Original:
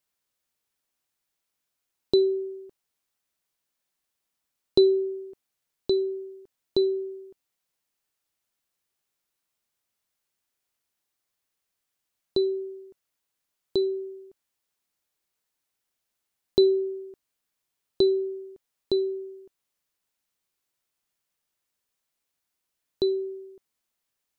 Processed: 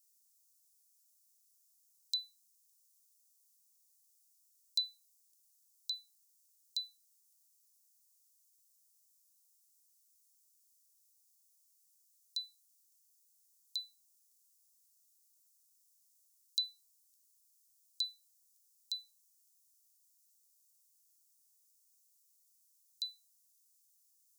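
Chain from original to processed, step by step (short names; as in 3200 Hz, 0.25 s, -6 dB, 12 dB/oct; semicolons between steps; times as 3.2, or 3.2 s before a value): inverse Chebyshev high-pass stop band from 1000 Hz, stop band 80 dB; gain +11.5 dB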